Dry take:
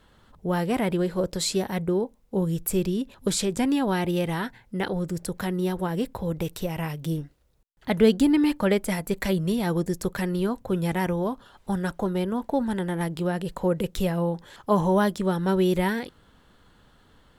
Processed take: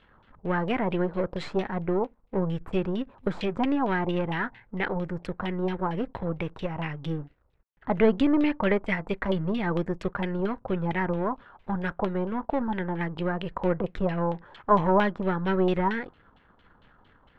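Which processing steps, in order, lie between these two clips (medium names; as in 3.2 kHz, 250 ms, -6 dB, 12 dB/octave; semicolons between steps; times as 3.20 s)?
partial rectifier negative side -7 dB; LFO low-pass saw down 4.4 Hz 840–3100 Hz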